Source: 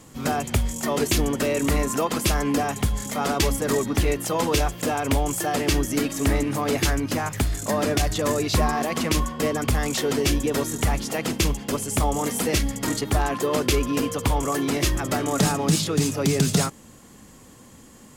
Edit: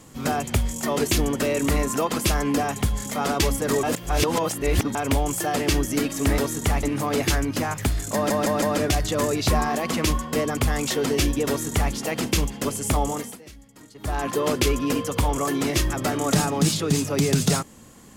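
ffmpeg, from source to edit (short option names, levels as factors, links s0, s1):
-filter_complex "[0:a]asplit=10[s0][s1][s2][s3][s4][s5][s6][s7][s8][s9];[s0]atrim=end=3.832[s10];[s1]atrim=start=3.828:end=4.952,asetpts=PTS-STARTPTS,areverse[s11];[s2]atrim=start=4.948:end=6.382[s12];[s3]atrim=start=10.548:end=11.002[s13];[s4]atrim=start=6.378:end=7.852[s14];[s5]atrim=start=7.688:end=7.852[s15];[s6]atrim=start=7.688:end=7.852[s16];[s7]atrim=start=7.688:end=12.45,asetpts=PTS-STARTPTS,afade=t=out:st=4.422:d=0.34:silence=0.0749894[s17];[s8]atrim=start=12.45:end=13.01,asetpts=PTS-STARTPTS,volume=0.075[s18];[s9]atrim=start=13.01,asetpts=PTS-STARTPTS,afade=t=in:d=0.34:silence=0.0749894[s19];[s10][s11]acrossfade=d=0.004:c1=hsin:c2=hsin[s20];[s20][s12]acrossfade=d=0.004:c1=hsin:c2=hsin[s21];[s21][s13]acrossfade=d=0.004:c1=hsin:c2=hsin[s22];[s22][s14]acrossfade=d=0.004:c1=hsin:c2=hsin[s23];[s23][s15]acrossfade=d=0.004:c1=hsin:c2=hsin[s24];[s24][s16]acrossfade=d=0.004:c1=hsin:c2=hsin[s25];[s17][s18][s19]concat=n=3:v=0:a=1[s26];[s25][s26]acrossfade=d=0.004:c1=hsin:c2=hsin"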